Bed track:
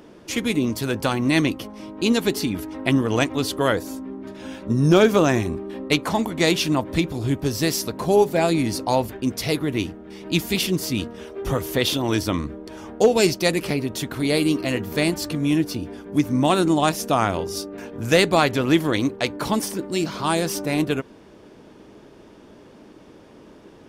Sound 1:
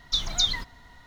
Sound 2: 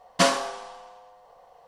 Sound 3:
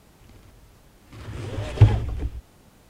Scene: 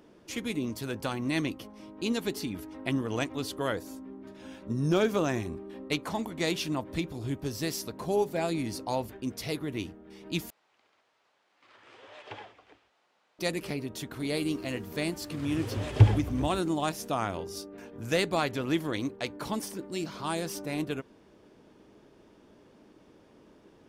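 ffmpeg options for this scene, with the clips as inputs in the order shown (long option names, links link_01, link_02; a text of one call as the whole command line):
ffmpeg -i bed.wav -i cue0.wav -i cue1.wav -i cue2.wav -filter_complex "[3:a]asplit=2[link_01][link_02];[0:a]volume=-10.5dB[link_03];[link_01]highpass=680,lowpass=4100[link_04];[link_02]highpass=78[link_05];[link_03]asplit=2[link_06][link_07];[link_06]atrim=end=10.504[link_08];[link_04]atrim=end=2.89,asetpts=PTS-STARTPTS,volume=-9.5dB[link_09];[link_07]atrim=start=13.386[link_10];[link_05]atrim=end=2.89,asetpts=PTS-STARTPTS,volume=-2.5dB,afade=type=in:duration=0.004:curve=hsin,afade=type=out:start_time=2.886:duration=0.004:curve=hsin,adelay=14190[link_11];[link_08][link_09]acrossfade=duration=0.004:curve1=hsin:curve2=hsin[link_12];[link_12][link_10]acrossfade=duration=0.004:curve1=hsin:curve2=hsin[link_13];[link_13][link_11]amix=inputs=2:normalize=0" out.wav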